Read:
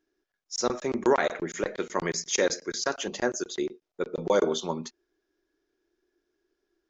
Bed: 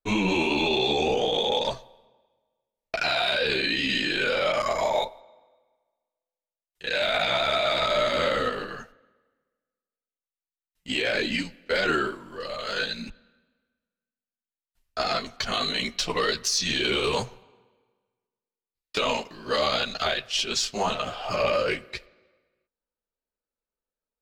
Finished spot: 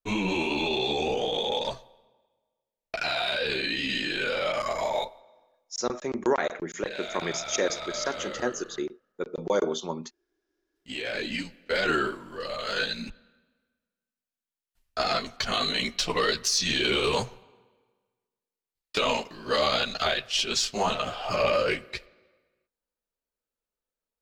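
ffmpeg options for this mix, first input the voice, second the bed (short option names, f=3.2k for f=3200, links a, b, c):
-filter_complex "[0:a]adelay=5200,volume=-2dB[a];[1:a]volume=9dB,afade=t=out:st=5.44:d=0.41:silence=0.354813,afade=t=in:st=10.65:d=1.47:silence=0.237137[b];[a][b]amix=inputs=2:normalize=0"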